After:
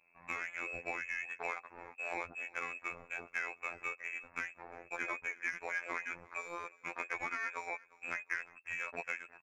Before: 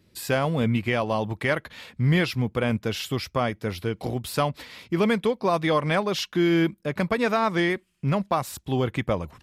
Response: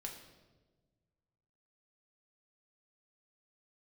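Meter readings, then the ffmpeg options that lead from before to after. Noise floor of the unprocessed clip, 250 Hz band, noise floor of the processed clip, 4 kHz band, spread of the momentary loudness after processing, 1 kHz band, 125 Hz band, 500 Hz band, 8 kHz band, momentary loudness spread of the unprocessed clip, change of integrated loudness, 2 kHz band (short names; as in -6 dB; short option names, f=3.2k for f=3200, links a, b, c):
-63 dBFS, -31.0 dB, -67 dBFS, -25.5 dB, 6 LU, -15.0 dB, -38.0 dB, -23.5 dB, -15.5 dB, 7 LU, -14.5 dB, -6.5 dB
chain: -filter_complex "[0:a]equalizer=f=210:t=o:w=0.67:g=-5.5,acrossover=split=400|840[a][b][c];[a]acompressor=threshold=-42dB:ratio=4[d];[b]acompressor=threshold=-46dB:ratio=4[e];[c]acompressor=threshold=-37dB:ratio=4[f];[d][e][f]amix=inputs=3:normalize=0,lowpass=f=2.3k:t=q:w=0.5098,lowpass=f=2.3k:t=q:w=0.6013,lowpass=f=2.3k:t=q:w=0.9,lowpass=f=2.3k:t=q:w=2.563,afreqshift=-2700,adynamicsmooth=sensitivity=4:basefreq=2.1k,asplit=2[g][h];[h]aecho=0:1:353|706:0.075|0.0255[i];[g][i]amix=inputs=2:normalize=0,afftfilt=real='hypot(re,im)*cos(PI*b)':imag='0':win_size=2048:overlap=0.75,volume=1.5dB"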